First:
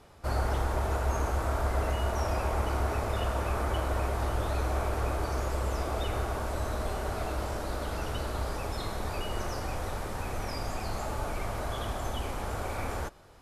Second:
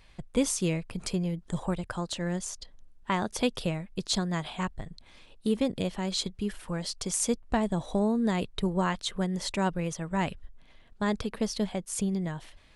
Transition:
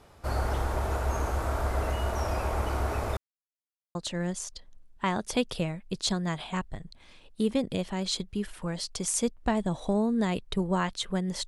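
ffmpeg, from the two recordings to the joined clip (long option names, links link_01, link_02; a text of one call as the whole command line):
ffmpeg -i cue0.wav -i cue1.wav -filter_complex "[0:a]apad=whole_dur=11.47,atrim=end=11.47,asplit=2[link_01][link_02];[link_01]atrim=end=3.17,asetpts=PTS-STARTPTS,afade=type=out:start_time=3.166:duration=0.004:curve=hsin[link_03];[link_02]atrim=start=3.17:end=3.95,asetpts=PTS-STARTPTS,volume=0[link_04];[1:a]atrim=start=2.01:end=9.53,asetpts=PTS-STARTPTS,afade=type=in:duration=0.004:curve=hsin[link_05];[link_03][link_04][link_05]concat=n=3:v=0:a=1" out.wav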